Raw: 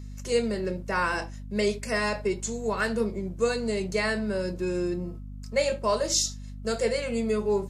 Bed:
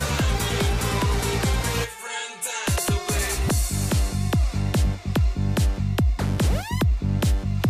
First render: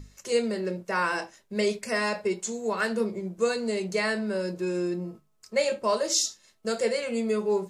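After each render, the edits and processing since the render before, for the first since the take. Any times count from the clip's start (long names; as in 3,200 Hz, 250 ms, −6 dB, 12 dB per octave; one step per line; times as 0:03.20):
mains-hum notches 50/100/150/200/250 Hz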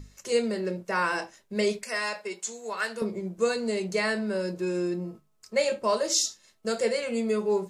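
0:01.83–0:03.02: high-pass filter 1,000 Hz 6 dB per octave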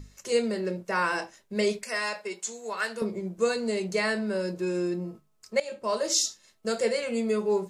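0:05.60–0:06.08: fade in, from −16.5 dB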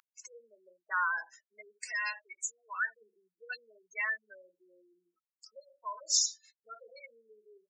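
gate on every frequency bin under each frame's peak −10 dB strong
Chebyshev high-pass filter 1,200 Hz, order 3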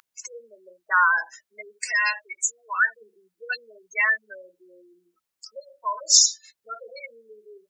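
level +12 dB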